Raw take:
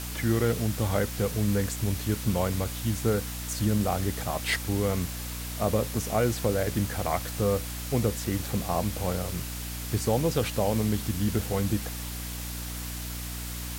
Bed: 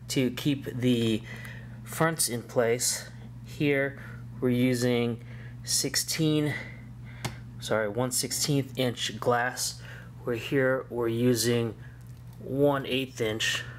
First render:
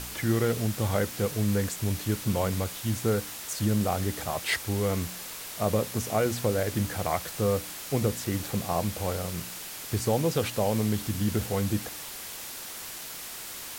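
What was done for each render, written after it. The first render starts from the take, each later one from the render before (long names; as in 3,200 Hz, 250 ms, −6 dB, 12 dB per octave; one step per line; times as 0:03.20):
hum removal 60 Hz, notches 5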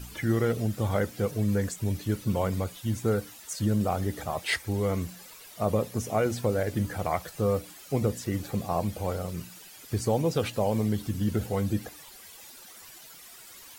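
broadband denoise 13 dB, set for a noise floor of −40 dBFS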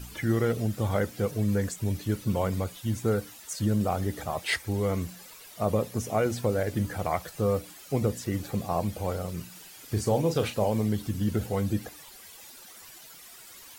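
0:09.50–0:10.69: double-tracking delay 38 ms −8.5 dB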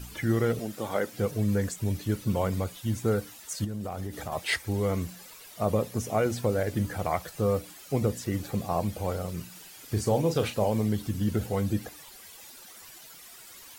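0:00.59–0:01.13: high-pass filter 260 Hz
0:03.64–0:04.32: downward compressor 12 to 1, threshold −29 dBFS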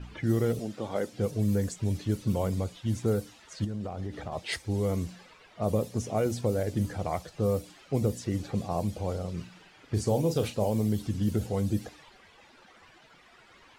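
low-pass that shuts in the quiet parts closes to 2,100 Hz, open at −21.5 dBFS
dynamic equaliser 1,600 Hz, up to −8 dB, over −45 dBFS, Q 0.7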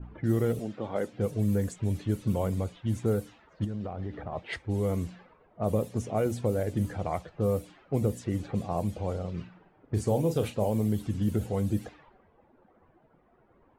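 low-pass that shuts in the quiet parts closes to 570 Hz, open at −25 dBFS
dynamic equaliser 5,100 Hz, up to −8 dB, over −60 dBFS, Q 1.4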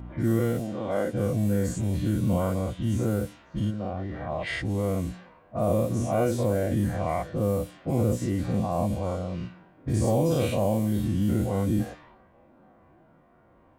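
every bin's largest magnitude spread in time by 120 ms
notch comb filter 430 Hz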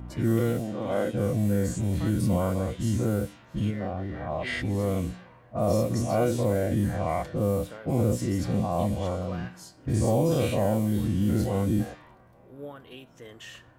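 mix in bed −17 dB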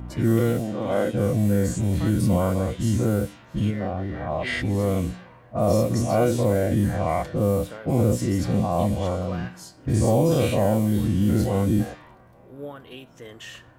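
level +4 dB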